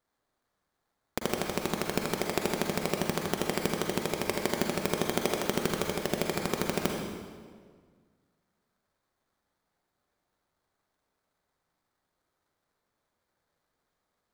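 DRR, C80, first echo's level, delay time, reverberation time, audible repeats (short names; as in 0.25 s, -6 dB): 1.0 dB, 3.5 dB, none, none, 1.7 s, none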